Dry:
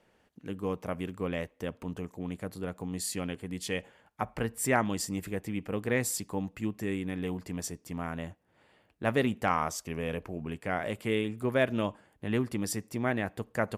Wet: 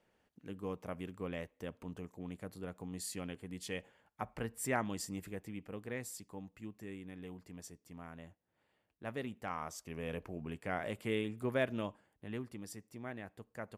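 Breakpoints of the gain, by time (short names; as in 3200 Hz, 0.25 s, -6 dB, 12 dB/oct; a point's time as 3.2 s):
5.14 s -8 dB
6.06 s -14 dB
9.43 s -14 dB
10.18 s -6 dB
11.51 s -6 dB
12.65 s -15 dB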